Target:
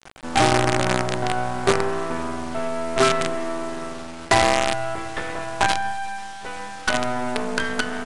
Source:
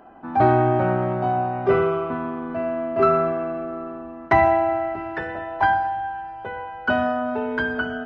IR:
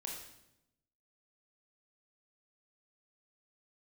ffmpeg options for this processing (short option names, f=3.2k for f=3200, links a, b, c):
-filter_complex "[0:a]asettb=1/sr,asplit=3[a][b][c];[a]atrim=end=5.914[d];[b]atrim=start=5.91:end=6.94,asetpts=PTS-STARTPTS,afade=t=in:d=0.004:c=qsin,afade=t=out:st=1.026:d=0.004:c=qsin,equalizer=f=160:w=0.55:g=-11[e];[c]atrim=start=6.936[f];[d][e]acrossfade=d=0.004:c1=hsin:c2=qsin[g];[g][f]acrossfade=d=0.004:c1=qsin:c2=hsin,acompressor=threshold=-24dB:ratio=2,acrusher=bits=4:dc=4:mix=0:aa=0.000001,aresample=22050,aresample=44100,volume=5dB"